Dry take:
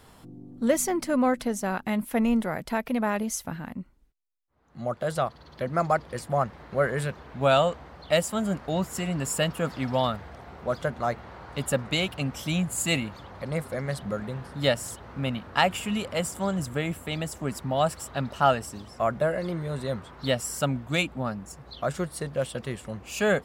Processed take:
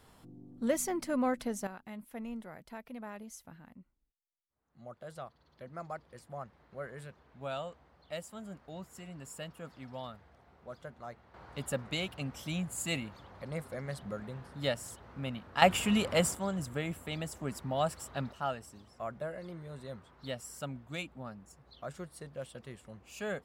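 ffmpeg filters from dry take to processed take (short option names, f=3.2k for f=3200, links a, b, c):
-af "asetnsamples=n=441:p=0,asendcmd='1.67 volume volume -18dB;11.34 volume volume -9dB;15.62 volume volume 0.5dB;16.35 volume volume -7dB;18.32 volume volume -14dB',volume=-7.5dB"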